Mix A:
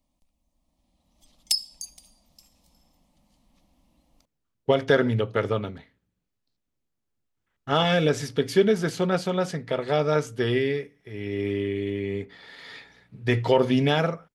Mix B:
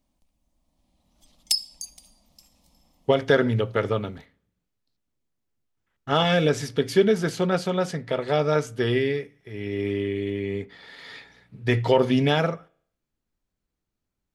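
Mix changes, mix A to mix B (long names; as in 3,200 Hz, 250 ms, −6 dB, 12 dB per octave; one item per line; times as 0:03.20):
speech: entry −1.60 s
reverb: on, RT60 0.65 s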